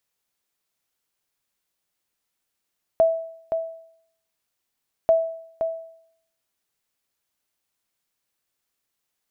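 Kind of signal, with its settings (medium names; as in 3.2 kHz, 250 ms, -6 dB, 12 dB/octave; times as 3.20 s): sonar ping 655 Hz, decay 0.67 s, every 2.09 s, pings 2, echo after 0.52 s, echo -7.5 dB -10.5 dBFS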